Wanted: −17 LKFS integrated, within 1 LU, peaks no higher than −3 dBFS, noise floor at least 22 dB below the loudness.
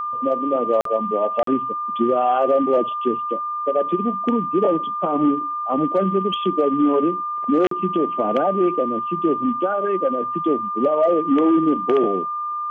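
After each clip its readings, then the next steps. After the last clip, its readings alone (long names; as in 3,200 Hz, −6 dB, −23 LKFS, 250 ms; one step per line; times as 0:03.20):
number of dropouts 3; longest dropout 43 ms; interfering tone 1,200 Hz; level of the tone −23 dBFS; integrated loudness −20.0 LKFS; sample peak −9.0 dBFS; target loudness −17.0 LKFS
→ repair the gap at 0:00.81/0:01.43/0:07.67, 43 ms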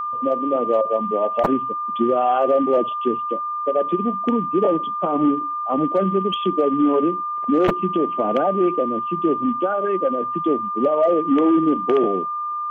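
number of dropouts 0; interfering tone 1,200 Hz; level of the tone −23 dBFS
→ notch filter 1,200 Hz, Q 30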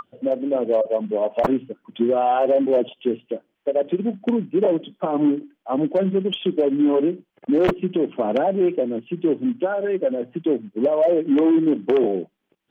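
interfering tone none found; integrated loudness −21.5 LKFS; sample peak −4.5 dBFS; target loudness −17.0 LKFS
→ level +4.5 dB
brickwall limiter −3 dBFS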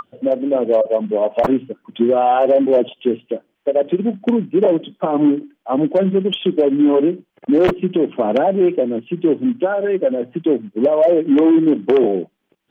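integrated loudness −17.0 LKFS; sample peak −3.0 dBFS; background noise floor −68 dBFS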